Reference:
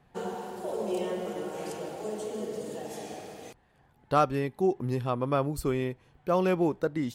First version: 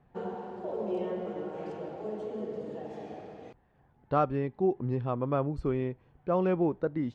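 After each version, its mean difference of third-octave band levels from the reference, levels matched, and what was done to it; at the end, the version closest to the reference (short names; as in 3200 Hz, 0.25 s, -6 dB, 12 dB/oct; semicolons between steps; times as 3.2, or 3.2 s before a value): 6.0 dB: tape spacing loss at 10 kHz 35 dB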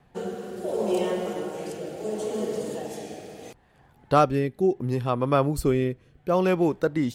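2.0 dB: rotary speaker horn 0.7 Hz; gain +6.5 dB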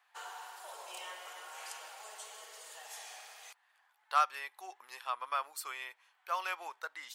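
14.5 dB: HPF 1000 Hz 24 dB/oct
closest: second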